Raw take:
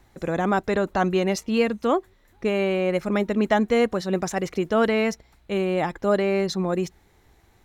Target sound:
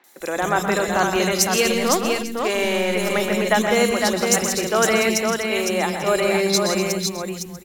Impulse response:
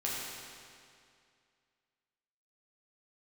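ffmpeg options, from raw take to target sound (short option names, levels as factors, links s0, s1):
-filter_complex "[0:a]asettb=1/sr,asplit=3[s0][s1][s2];[s0]atrim=end=1.504[s3];[s1]atrim=start=1.5:end=2.93,asetpts=PTS-STARTPTS,afade=t=in:d=0.004:c=qsin,afade=t=out:st=1.426:d=0.004:c=qsin,aeval=exprs='0.355*(cos(1*acos(clip(val(0)/0.355,-1,1)))-cos(1*PI/2))+0.0158*(cos(8*acos(clip(val(0)/0.355,-1,1)))-cos(8*PI/2))':c=same[s4];[s2]atrim=start=2.926[s5];[s3][s4]acrossfade=d=0.004:c1=hsin:c2=qsin[s6];[s6][s5]acrossfade=d=0.004:c1=qsin:c2=hsin,acrossover=split=250|3200[s7][s8][s9];[s9]adelay=40[s10];[s7]adelay=200[s11];[s11][s8][s10]amix=inputs=3:normalize=0,crystalizer=i=6.5:c=0,asplit=2[s12][s13];[s13]aecho=0:1:123|164|248|508|641|846:0.335|0.355|0.224|0.596|0.126|0.106[s14];[s12][s14]amix=inputs=2:normalize=0"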